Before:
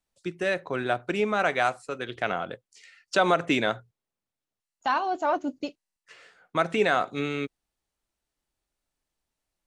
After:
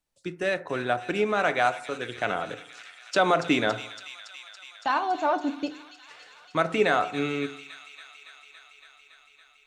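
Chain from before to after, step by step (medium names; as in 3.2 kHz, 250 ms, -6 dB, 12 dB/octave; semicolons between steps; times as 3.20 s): feedback echo behind a high-pass 281 ms, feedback 79%, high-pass 2.9 kHz, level -8 dB; FDN reverb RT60 0.71 s, low-frequency decay 1×, high-frequency decay 0.3×, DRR 11 dB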